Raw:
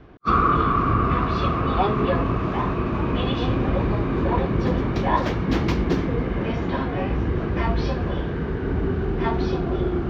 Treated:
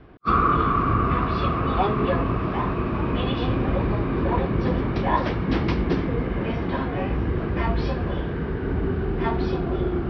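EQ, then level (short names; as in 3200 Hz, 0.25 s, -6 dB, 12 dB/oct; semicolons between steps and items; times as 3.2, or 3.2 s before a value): elliptic low-pass 5400 Hz, stop band 50 dB; air absorption 56 m; 0.0 dB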